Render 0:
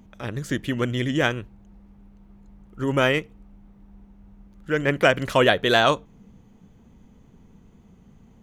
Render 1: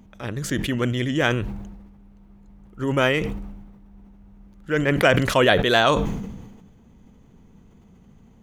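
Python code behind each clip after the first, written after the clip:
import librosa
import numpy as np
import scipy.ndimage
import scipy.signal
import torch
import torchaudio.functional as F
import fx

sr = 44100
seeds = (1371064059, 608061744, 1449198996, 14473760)

y = fx.sustainer(x, sr, db_per_s=44.0)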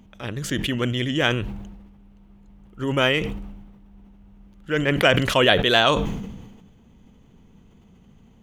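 y = fx.peak_eq(x, sr, hz=3000.0, db=6.5, octaves=0.57)
y = F.gain(torch.from_numpy(y), -1.0).numpy()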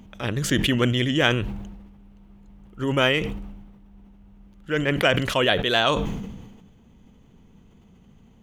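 y = fx.rider(x, sr, range_db=4, speed_s=0.5)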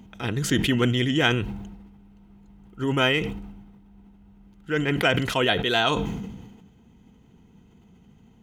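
y = fx.notch_comb(x, sr, f0_hz=570.0)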